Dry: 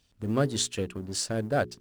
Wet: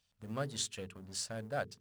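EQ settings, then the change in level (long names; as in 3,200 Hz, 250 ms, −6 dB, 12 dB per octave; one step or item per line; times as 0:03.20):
low-shelf EQ 93 Hz −7 dB
parametric band 330 Hz −11.5 dB 0.73 octaves
mains-hum notches 50/100/150/200/250/300/350/400/450 Hz
−8.0 dB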